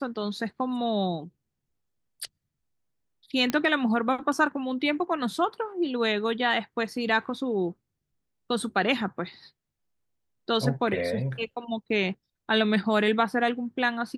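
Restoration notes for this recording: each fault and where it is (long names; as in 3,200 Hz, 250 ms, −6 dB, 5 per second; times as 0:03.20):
0:03.50: click −12 dBFS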